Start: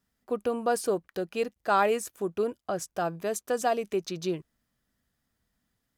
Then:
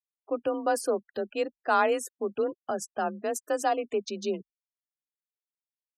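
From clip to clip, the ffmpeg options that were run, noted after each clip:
ffmpeg -i in.wav -af "afftfilt=real='re*gte(hypot(re,im),0.00794)':imag='im*gte(hypot(re,im),0.00794)':win_size=1024:overlap=0.75,afreqshift=35" out.wav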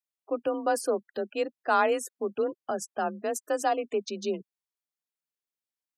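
ffmpeg -i in.wav -af "highpass=110" out.wav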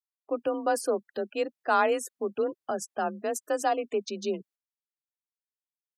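ffmpeg -i in.wav -af "agate=range=-22dB:threshold=-55dB:ratio=16:detection=peak" out.wav

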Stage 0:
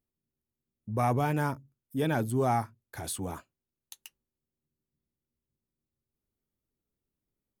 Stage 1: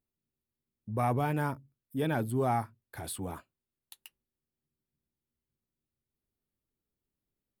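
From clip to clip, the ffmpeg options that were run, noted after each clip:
ffmpeg -i in.wav -af "equalizer=frequency=6300:width_type=o:width=0.38:gain=-12,volume=-2dB" out.wav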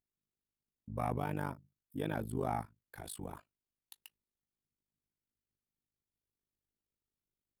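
ffmpeg -i in.wav -af "tremolo=f=51:d=0.947,volume=-3dB" out.wav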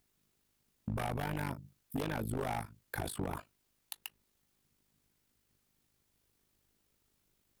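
ffmpeg -i in.wav -filter_complex "[0:a]acrossover=split=950|1900[link_01][link_02][link_03];[link_01]acompressor=threshold=-43dB:ratio=4[link_04];[link_02]acompressor=threshold=-57dB:ratio=4[link_05];[link_03]acompressor=threshold=-57dB:ratio=4[link_06];[link_04][link_05][link_06]amix=inputs=3:normalize=0,aeval=exprs='0.0112*(abs(mod(val(0)/0.0112+3,4)-2)-1)':channel_layout=same,acompressor=threshold=-54dB:ratio=2,volume=16.5dB" out.wav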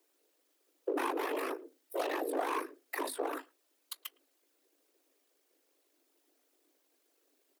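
ffmpeg -i in.wav -filter_complex "[0:a]afftfilt=real='hypot(re,im)*cos(2*PI*random(0))':imag='hypot(re,im)*sin(2*PI*random(1))':win_size=512:overlap=0.75,afreqshift=260,asplit=2[link_01][link_02];[link_02]adelay=110,highpass=300,lowpass=3400,asoftclip=type=hard:threshold=-36.5dB,volume=-27dB[link_03];[link_01][link_03]amix=inputs=2:normalize=0,volume=8dB" out.wav

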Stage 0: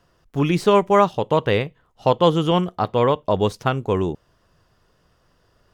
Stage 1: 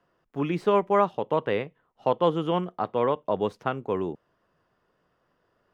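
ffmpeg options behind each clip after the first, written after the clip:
ffmpeg -i in.wav -filter_complex "[0:a]acrossover=split=160 2800:gain=0.2 1 0.224[link_01][link_02][link_03];[link_01][link_02][link_03]amix=inputs=3:normalize=0,volume=-6dB" out.wav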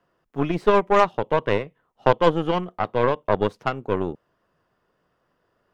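ffmpeg -i in.wav -af "aeval=exprs='0.398*(cos(1*acos(clip(val(0)/0.398,-1,1)))-cos(1*PI/2))+0.0708*(cos(4*acos(clip(val(0)/0.398,-1,1)))-cos(4*PI/2))+0.0251*(cos(7*acos(clip(val(0)/0.398,-1,1)))-cos(7*PI/2))':channel_layout=same,volume=6dB" out.wav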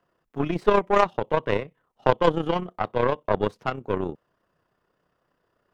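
ffmpeg -i in.wav -af "tremolo=f=32:d=0.519" out.wav

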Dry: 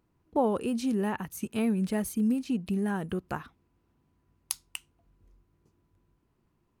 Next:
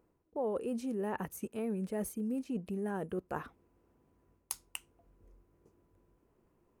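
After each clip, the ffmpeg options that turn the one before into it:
ffmpeg -i in.wav -af "equalizer=frequency=125:width_type=o:width=1:gain=-4,equalizer=frequency=500:width_type=o:width=1:gain=9,equalizer=frequency=4000:width_type=o:width=1:gain=-7,areverse,acompressor=threshold=-35dB:ratio=4,areverse" out.wav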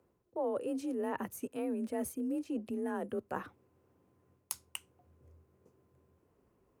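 ffmpeg -i in.wav -af "afreqshift=37" out.wav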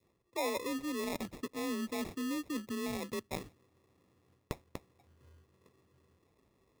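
ffmpeg -i in.wav -af "acrusher=samples=29:mix=1:aa=0.000001,adynamicequalizer=threshold=0.00355:dfrequency=870:dqfactor=0.74:tfrequency=870:tqfactor=0.74:attack=5:release=100:ratio=0.375:range=2.5:mode=cutabove:tftype=bell" out.wav

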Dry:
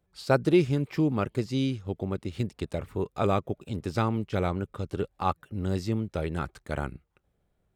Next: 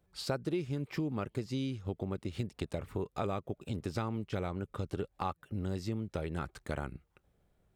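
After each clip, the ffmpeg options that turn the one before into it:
ffmpeg -i in.wav -af "acompressor=threshold=-35dB:ratio=4,volume=1.5dB" out.wav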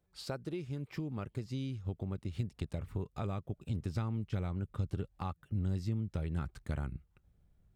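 ffmpeg -i in.wav -af "asubboost=boost=3.5:cutoff=220,volume=-5.5dB" out.wav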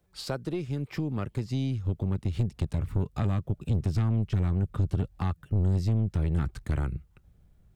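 ffmpeg -i in.wav -filter_complex "[0:a]acrossover=split=250|1500[link_01][link_02][link_03];[link_01]dynaudnorm=framelen=730:gausssize=5:maxgain=5.5dB[link_04];[link_04][link_02][link_03]amix=inputs=3:normalize=0,aeval=exprs='(tanh(28.2*val(0)+0.3)-tanh(0.3))/28.2':channel_layout=same,volume=8.5dB" out.wav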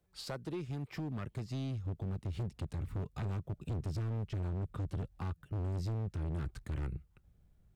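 ffmpeg -i in.wav -af "asoftclip=type=hard:threshold=-27dB,volume=-6.5dB" out.wav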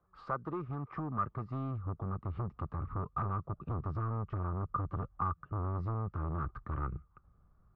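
ffmpeg -i in.wav -af "lowpass=frequency=1200:width_type=q:width=12" out.wav

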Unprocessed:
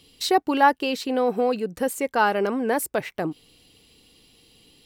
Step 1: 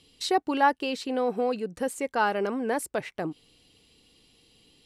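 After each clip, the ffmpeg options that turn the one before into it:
ffmpeg -i in.wav -af "lowpass=frequency=11000:width=0.5412,lowpass=frequency=11000:width=1.3066,volume=-4.5dB" out.wav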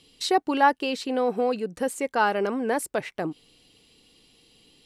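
ffmpeg -i in.wav -af "equalizer=frequency=71:width_type=o:width=1.3:gain=-5.5,volume=2.5dB" out.wav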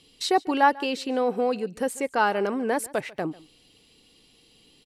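ffmpeg -i in.wav -af "aecho=1:1:144:0.0841" out.wav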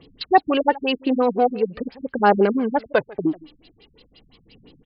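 ffmpeg -i in.wav -af "aphaser=in_gain=1:out_gain=1:delay=3.5:decay=0.48:speed=0.43:type=triangular,afftfilt=real='re*lt(b*sr/1024,210*pow(5500/210,0.5+0.5*sin(2*PI*5.8*pts/sr)))':imag='im*lt(b*sr/1024,210*pow(5500/210,0.5+0.5*sin(2*PI*5.8*pts/sr)))':win_size=1024:overlap=0.75,volume=7.5dB" out.wav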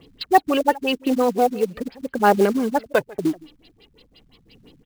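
ffmpeg -i in.wav -af "acrusher=bits=5:mode=log:mix=0:aa=0.000001" out.wav

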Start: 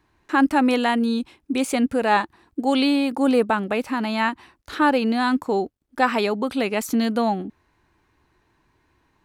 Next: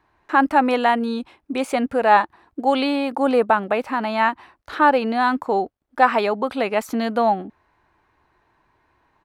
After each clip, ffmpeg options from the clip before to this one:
ffmpeg -i in.wav -af "firequalizer=gain_entry='entry(290,0);entry(640,9);entry(2700,2);entry(6700,-4)':delay=0.05:min_phase=1,volume=-3dB" out.wav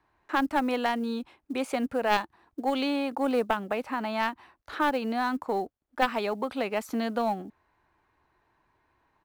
ffmpeg -i in.wav -filter_complex "[0:a]aeval=exprs='0.891*(cos(1*acos(clip(val(0)/0.891,-1,1)))-cos(1*PI/2))+0.158*(cos(3*acos(clip(val(0)/0.891,-1,1)))-cos(3*PI/2))':channel_layout=same,acrusher=bits=9:mode=log:mix=0:aa=0.000001,acrossover=split=330|3000[link_01][link_02][link_03];[link_02]acompressor=threshold=-29dB:ratio=2[link_04];[link_01][link_04][link_03]amix=inputs=3:normalize=0" out.wav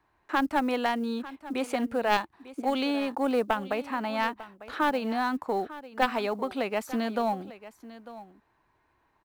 ffmpeg -i in.wav -af "aecho=1:1:898:0.15" out.wav

